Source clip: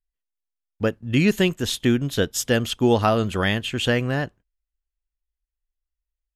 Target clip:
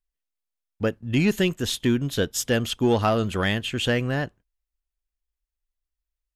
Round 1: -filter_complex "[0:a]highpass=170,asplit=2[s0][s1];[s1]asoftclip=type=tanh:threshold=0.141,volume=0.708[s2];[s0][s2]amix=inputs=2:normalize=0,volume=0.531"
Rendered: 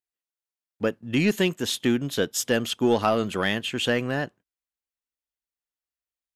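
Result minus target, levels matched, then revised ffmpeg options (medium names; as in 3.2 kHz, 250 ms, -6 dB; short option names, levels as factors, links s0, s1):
125 Hz band -5.0 dB
-filter_complex "[0:a]asplit=2[s0][s1];[s1]asoftclip=type=tanh:threshold=0.141,volume=0.708[s2];[s0][s2]amix=inputs=2:normalize=0,volume=0.531"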